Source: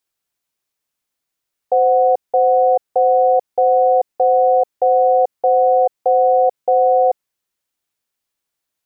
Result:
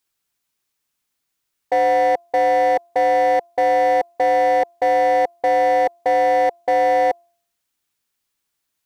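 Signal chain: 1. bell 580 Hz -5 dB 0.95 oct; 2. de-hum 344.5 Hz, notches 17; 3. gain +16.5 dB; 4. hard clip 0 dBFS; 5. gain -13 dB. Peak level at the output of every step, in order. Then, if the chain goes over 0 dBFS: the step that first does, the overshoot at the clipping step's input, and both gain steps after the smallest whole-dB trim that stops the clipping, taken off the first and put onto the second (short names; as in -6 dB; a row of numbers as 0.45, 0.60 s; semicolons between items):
-10.5, -10.5, +6.0, 0.0, -13.0 dBFS; step 3, 6.0 dB; step 3 +10.5 dB, step 5 -7 dB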